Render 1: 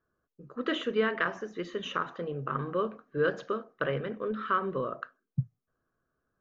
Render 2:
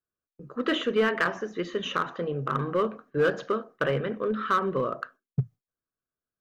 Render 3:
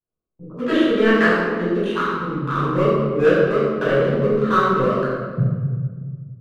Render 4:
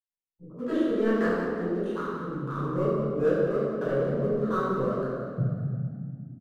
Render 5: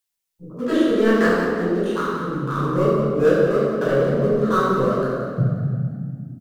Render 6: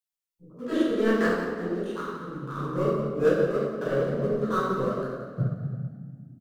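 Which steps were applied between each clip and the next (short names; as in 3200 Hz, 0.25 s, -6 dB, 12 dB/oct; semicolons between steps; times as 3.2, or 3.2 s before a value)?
gate with hold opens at -46 dBFS; in parallel at -9.5 dB: wavefolder -25 dBFS; on the sum: gain +2.5 dB
Wiener smoothing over 25 samples; spectral gain 1.86–2.52, 350–810 Hz -13 dB; reverb RT60 1.6 s, pre-delay 11 ms, DRR -9.5 dB; gain -3.5 dB
spectral noise reduction 15 dB; bell 2600 Hz -12.5 dB 1.7 oct; on a send: frequency-shifting echo 0.177 s, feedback 51%, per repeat +31 Hz, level -10.5 dB; on the sum: gain -8 dB
high shelf 2300 Hz +9 dB; gain +7.5 dB
upward expander 1.5:1, over -27 dBFS; gain -4.5 dB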